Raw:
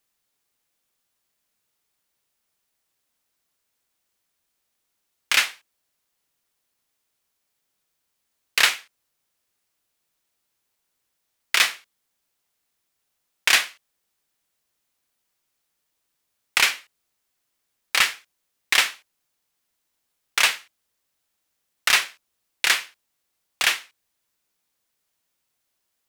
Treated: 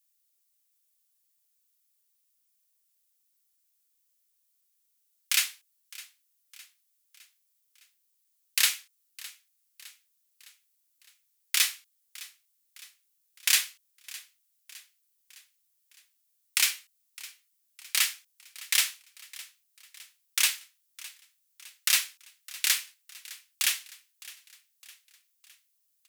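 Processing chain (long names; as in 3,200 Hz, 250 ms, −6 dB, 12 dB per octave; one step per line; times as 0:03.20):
first difference
on a send: repeating echo 610 ms, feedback 52%, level −19.5 dB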